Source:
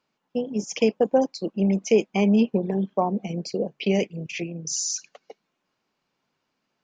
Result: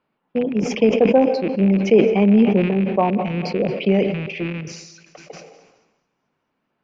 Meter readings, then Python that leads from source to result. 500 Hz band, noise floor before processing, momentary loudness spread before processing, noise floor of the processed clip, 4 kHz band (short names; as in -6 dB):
+6.0 dB, -78 dBFS, 11 LU, -74 dBFS, +0.5 dB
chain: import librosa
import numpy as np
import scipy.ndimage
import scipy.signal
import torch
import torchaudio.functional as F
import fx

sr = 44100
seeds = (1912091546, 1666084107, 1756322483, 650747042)

y = fx.rattle_buzz(x, sr, strikes_db=-34.0, level_db=-24.0)
y = fx.air_absorb(y, sr, metres=410.0)
y = fx.echo_thinned(y, sr, ms=218, feedback_pct=57, hz=760.0, wet_db=-20.0)
y = fx.rev_plate(y, sr, seeds[0], rt60_s=1.5, hf_ratio=0.85, predelay_ms=105, drr_db=18.0)
y = fx.sustainer(y, sr, db_per_s=51.0)
y = y * 10.0 ** (5.5 / 20.0)